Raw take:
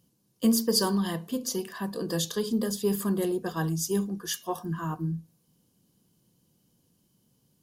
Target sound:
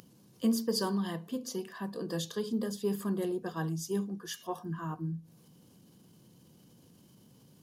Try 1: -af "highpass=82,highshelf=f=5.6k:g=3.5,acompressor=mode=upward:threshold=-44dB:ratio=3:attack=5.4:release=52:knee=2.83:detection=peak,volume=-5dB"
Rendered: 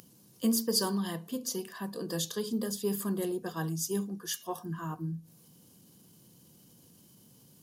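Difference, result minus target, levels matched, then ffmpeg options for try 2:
8000 Hz band +6.0 dB
-af "highpass=82,highshelf=f=5.6k:g=-8,acompressor=mode=upward:threshold=-44dB:ratio=3:attack=5.4:release=52:knee=2.83:detection=peak,volume=-5dB"

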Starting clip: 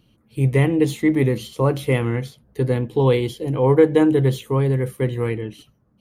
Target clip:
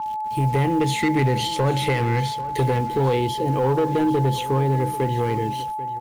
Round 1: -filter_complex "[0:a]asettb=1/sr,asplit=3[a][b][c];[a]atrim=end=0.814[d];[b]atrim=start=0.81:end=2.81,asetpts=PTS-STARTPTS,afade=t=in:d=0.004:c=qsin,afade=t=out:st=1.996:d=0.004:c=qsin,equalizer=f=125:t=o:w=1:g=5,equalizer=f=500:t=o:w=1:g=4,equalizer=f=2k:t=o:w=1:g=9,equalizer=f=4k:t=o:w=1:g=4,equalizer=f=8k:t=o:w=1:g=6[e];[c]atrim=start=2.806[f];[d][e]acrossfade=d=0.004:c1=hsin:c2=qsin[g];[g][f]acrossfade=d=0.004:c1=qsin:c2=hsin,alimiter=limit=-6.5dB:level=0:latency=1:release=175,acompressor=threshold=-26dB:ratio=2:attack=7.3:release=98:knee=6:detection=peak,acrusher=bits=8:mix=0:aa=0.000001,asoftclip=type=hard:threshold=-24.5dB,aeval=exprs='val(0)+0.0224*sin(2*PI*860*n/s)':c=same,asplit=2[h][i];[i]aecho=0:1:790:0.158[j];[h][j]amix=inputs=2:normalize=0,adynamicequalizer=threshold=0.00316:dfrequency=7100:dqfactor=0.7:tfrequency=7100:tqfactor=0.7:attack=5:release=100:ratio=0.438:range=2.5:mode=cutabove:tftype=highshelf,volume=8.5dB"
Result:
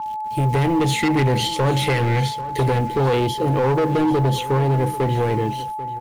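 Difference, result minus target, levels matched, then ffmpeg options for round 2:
compressor: peak gain reduction -5 dB
-filter_complex "[0:a]asettb=1/sr,asplit=3[a][b][c];[a]atrim=end=0.814[d];[b]atrim=start=0.81:end=2.81,asetpts=PTS-STARTPTS,afade=t=in:d=0.004:c=qsin,afade=t=out:st=1.996:d=0.004:c=qsin,equalizer=f=125:t=o:w=1:g=5,equalizer=f=500:t=o:w=1:g=4,equalizer=f=2k:t=o:w=1:g=9,equalizer=f=4k:t=o:w=1:g=4,equalizer=f=8k:t=o:w=1:g=6[e];[c]atrim=start=2.806[f];[d][e]acrossfade=d=0.004:c1=hsin:c2=qsin[g];[g][f]acrossfade=d=0.004:c1=qsin:c2=hsin,alimiter=limit=-6.5dB:level=0:latency=1:release=175,acompressor=threshold=-35.5dB:ratio=2:attack=7.3:release=98:knee=6:detection=peak,acrusher=bits=8:mix=0:aa=0.000001,asoftclip=type=hard:threshold=-24.5dB,aeval=exprs='val(0)+0.0224*sin(2*PI*860*n/s)':c=same,asplit=2[h][i];[i]aecho=0:1:790:0.158[j];[h][j]amix=inputs=2:normalize=0,adynamicequalizer=threshold=0.00316:dfrequency=7100:dqfactor=0.7:tfrequency=7100:tqfactor=0.7:attack=5:release=100:ratio=0.438:range=2.5:mode=cutabove:tftype=highshelf,volume=8.5dB"

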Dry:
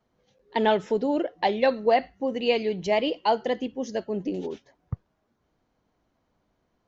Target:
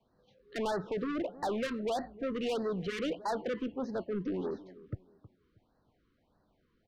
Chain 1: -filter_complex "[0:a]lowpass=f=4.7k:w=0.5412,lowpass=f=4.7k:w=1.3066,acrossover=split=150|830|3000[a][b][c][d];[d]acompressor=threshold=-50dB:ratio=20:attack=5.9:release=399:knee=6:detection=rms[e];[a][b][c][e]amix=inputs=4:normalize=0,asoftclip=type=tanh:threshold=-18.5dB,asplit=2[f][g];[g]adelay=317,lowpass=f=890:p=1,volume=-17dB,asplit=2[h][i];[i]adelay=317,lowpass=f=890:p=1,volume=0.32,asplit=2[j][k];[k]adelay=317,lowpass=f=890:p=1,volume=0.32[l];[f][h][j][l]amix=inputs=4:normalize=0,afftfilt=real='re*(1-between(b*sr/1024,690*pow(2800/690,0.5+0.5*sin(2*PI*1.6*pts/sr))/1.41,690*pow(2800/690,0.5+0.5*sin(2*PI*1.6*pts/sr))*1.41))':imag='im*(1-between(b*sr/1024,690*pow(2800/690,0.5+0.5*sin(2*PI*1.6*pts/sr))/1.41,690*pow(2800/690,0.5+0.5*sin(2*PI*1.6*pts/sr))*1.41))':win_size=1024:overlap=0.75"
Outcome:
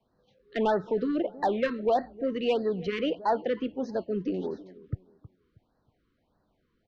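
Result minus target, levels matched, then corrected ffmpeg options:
compressor: peak gain reduction -7 dB; soft clip: distortion -9 dB
-filter_complex "[0:a]lowpass=f=4.7k:w=0.5412,lowpass=f=4.7k:w=1.3066,acrossover=split=150|830|3000[a][b][c][d];[d]acompressor=threshold=-57.5dB:ratio=20:attack=5.9:release=399:knee=6:detection=rms[e];[a][b][c][e]amix=inputs=4:normalize=0,asoftclip=type=tanh:threshold=-30dB,asplit=2[f][g];[g]adelay=317,lowpass=f=890:p=1,volume=-17dB,asplit=2[h][i];[i]adelay=317,lowpass=f=890:p=1,volume=0.32,asplit=2[j][k];[k]adelay=317,lowpass=f=890:p=1,volume=0.32[l];[f][h][j][l]amix=inputs=4:normalize=0,afftfilt=real='re*(1-between(b*sr/1024,690*pow(2800/690,0.5+0.5*sin(2*PI*1.6*pts/sr))/1.41,690*pow(2800/690,0.5+0.5*sin(2*PI*1.6*pts/sr))*1.41))':imag='im*(1-between(b*sr/1024,690*pow(2800/690,0.5+0.5*sin(2*PI*1.6*pts/sr))/1.41,690*pow(2800/690,0.5+0.5*sin(2*PI*1.6*pts/sr))*1.41))':win_size=1024:overlap=0.75"

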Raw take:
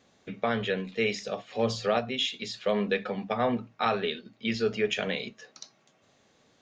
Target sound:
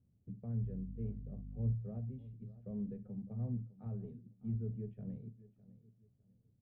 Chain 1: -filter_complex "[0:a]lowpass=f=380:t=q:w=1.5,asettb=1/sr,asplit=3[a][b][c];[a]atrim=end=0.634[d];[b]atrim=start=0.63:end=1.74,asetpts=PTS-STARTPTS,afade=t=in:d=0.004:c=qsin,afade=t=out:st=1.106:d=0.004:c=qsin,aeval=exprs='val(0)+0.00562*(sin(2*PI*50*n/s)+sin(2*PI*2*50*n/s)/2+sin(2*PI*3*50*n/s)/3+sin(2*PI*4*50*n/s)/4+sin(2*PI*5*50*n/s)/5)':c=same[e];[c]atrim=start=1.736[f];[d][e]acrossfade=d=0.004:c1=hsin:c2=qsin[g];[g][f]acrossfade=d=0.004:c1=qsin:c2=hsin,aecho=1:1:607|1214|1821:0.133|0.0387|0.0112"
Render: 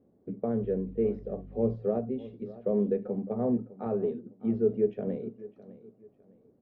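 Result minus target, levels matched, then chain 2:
500 Hz band +13.5 dB
-filter_complex "[0:a]lowpass=f=110:t=q:w=1.5,asettb=1/sr,asplit=3[a][b][c];[a]atrim=end=0.634[d];[b]atrim=start=0.63:end=1.74,asetpts=PTS-STARTPTS,afade=t=in:d=0.004:c=qsin,afade=t=out:st=1.106:d=0.004:c=qsin,aeval=exprs='val(0)+0.00562*(sin(2*PI*50*n/s)+sin(2*PI*2*50*n/s)/2+sin(2*PI*3*50*n/s)/3+sin(2*PI*4*50*n/s)/4+sin(2*PI*5*50*n/s)/5)':c=same[e];[c]atrim=start=1.736[f];[d][e]acrossfade=d=0.004:c1=hsin:c2=qsin[g];[g][f]acrossfade=d=0.004:c1=qsin:c2=hsin,aecho=1:1:607|1214|1821:0.133|0.0387|0.0112"

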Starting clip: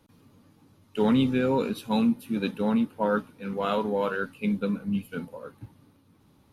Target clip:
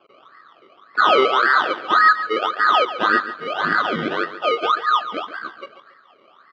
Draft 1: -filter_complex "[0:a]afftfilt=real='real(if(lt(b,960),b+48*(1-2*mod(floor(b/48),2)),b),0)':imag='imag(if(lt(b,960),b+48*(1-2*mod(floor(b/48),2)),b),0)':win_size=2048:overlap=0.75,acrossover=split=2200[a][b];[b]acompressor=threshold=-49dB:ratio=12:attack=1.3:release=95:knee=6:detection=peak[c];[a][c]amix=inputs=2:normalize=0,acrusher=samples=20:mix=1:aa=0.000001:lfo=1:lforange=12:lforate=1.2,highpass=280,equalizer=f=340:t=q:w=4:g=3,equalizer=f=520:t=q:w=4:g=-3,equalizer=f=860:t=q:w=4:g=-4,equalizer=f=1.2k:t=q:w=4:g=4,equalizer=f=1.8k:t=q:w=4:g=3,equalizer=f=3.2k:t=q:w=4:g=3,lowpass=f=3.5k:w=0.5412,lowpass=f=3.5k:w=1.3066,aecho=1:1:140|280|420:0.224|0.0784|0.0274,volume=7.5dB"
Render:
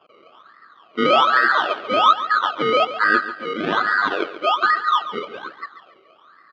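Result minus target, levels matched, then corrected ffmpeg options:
decimation with a swept rate: distortion +12 dB
-filter_complex "[0:a]afftfilt=real='real(if(lt(b,960),b+48*(1-2*mod(floor(b/48),2)),b),0)':imag='imag(if(lt(b,960),b+48*(1-2*mod(floor(b/48),2)),b),0)':win_size=2048:overlap=0.75,acrossover=split=2200[a][b];[b]acompressor=threshold=-49dB:ratio=12:attack=1.3:release=95:knee=6:detection=peak[c];[a][c]amix=inputs=2:normalize=0,acrusher=samples=20:mix=1:aa=0.000001:lfo=1:lforange=12:lforate=1.8,highpass=280,equalizer=f=340:t=q:w=4:g=3,equalizer=f=520:t=q:w=4:g=-3,equalizer=f=860:t=q:w=4:g=-4,equalizer=f=1.2k:t=q:w=4:g=4,equalizer=f=1.8k:t=q:w=4:g=3,equalizer=f=3.2k:t=q:w=4:g=3,lowpass=f=3.5k:w=0.5412,lowpass=f=3.5k:w=1.3066,aecho=1:1:140|280|420:0.224|0.0784|0.0274,volume=7.5dB"

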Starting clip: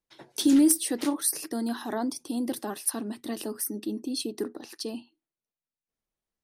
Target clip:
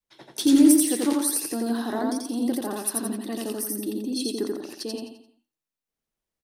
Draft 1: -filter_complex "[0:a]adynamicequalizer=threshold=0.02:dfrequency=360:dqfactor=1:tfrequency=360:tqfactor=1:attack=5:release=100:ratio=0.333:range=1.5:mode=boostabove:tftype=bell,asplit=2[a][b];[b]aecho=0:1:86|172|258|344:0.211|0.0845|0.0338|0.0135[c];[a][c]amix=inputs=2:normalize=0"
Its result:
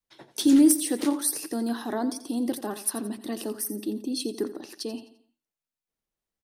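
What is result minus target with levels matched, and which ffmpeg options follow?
echo-to-direct -12 dB
-filter_complex "[0:a]adynamicequalizer=threshold=0.02:dfrequency=360:dqfactor=1:tfrequency=360:tqfactor=1:attack=5:release=100:ratio=0.333:range=1.5:mode=boostabove:tftype=bell,asplit=2[a][b];[b]aecho=0:1:86|172|258|344|430:0.841|0.337|0.135|0.0538|0.0215[c];[a][c]amix=inputs=2:normalize=0"

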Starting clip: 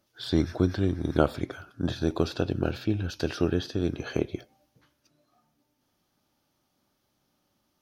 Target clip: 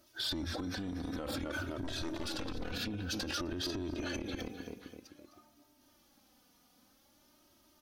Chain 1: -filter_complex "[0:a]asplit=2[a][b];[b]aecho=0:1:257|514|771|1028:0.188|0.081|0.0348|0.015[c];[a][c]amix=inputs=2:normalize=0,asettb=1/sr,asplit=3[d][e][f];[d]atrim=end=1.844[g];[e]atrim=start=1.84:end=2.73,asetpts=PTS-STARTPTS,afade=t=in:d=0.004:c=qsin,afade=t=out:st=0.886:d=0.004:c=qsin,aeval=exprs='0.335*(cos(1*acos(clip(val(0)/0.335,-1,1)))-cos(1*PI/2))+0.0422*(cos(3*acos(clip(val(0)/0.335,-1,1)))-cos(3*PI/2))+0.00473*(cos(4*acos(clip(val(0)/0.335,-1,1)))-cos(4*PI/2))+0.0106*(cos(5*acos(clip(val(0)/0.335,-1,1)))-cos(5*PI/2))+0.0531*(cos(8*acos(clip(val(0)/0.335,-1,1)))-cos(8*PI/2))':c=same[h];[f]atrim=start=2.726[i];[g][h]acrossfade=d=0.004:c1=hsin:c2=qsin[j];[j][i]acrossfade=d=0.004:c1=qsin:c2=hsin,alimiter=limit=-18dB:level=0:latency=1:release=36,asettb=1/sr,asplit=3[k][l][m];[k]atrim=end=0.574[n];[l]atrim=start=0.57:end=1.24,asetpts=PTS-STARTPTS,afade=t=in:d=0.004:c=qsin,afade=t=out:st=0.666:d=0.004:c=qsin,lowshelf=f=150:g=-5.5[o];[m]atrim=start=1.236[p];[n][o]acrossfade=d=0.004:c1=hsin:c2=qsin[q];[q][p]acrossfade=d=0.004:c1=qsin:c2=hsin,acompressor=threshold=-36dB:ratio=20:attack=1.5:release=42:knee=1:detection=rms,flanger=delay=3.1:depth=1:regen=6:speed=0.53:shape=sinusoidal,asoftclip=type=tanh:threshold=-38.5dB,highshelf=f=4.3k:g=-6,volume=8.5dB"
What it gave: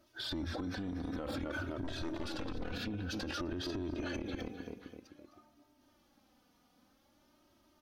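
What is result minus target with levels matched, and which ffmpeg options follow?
8000 Hz band -6.5 dB
-filter_complex "[0:a]asplit=2[a][b];[b]aecho=0:1:257|514|771|1028:0.188|0.081|0.0348|0.015[c];[a][c]amix=inputs=2:normalize=0,asettb=1/sr,asplit=3[d][e][f];[d]atrim=end=1.844[g];[e]atrim=start=1.84:end=2.73,asetpts=PTS-STARTPTS,afade=t=in:d=0.004:c=qsin,afade=t=out:st=0.886:d=0.004:c=qsin,aeval=exprs='0.335*(cos(1*acos(clip(val(0)/0.335,-1,1)))-cos(1*PI/2))+0.0422*(cos(3*acos(clip(val(0)/0.335,-1,1)))-cos(3*PI/2))+0.00473*(cos(4*acos(clip(val(0)/0.335,-1,1)))-cos(4*PI/2))+0.0106*(cos(5*acos(clip(val(0)/0.335,-1,1)))-cos(5*PI/2))+0.0531*(cos(8*acos(clip(val(0)/0.335,-1,1)))-cos(8*PI/2))':c=same[h];[f]atrim=start=2.726[i];[g][h]acrossfade=d=0.004:c1=hsin:c2=qsin[j];[j][i]acrossfade=d=0.004:c1=qsin:c2=hsin,alimiter=limit=-18dB:level=0:latency=1:release=36,asettb=1/sr,asplit=3[k][l][m];[k]atrim=end=0.574[n];[l]atrim=start=0.57:end=1.24,asetpts=PTS-STARTPTS,afade=t=in:d=0.004:c=qsin,afade=t=out:st=0.666:d=0.004:c=qsin,lowshelf=f=150:g=-5.5[o];[m]atrim=start=1.236[p];[n][o]acrossfade=d=0.004:c1=hsin:c2=qsin[q];[q][p]acrossfade=d=0.004:c1=qsin:c2=hsin,acompressor=threshold=-36dB:ratio=20:attack=1.5:release=42:knee=1:detection=rms,flanger=delay=3.1:depth=1:regen=6:speed=0.53:shape=sinusoidal,asoftclip=type=tanh:threshold=-38.5dB,highshelf=f=4.3k:g=5,volume=8.5dB"

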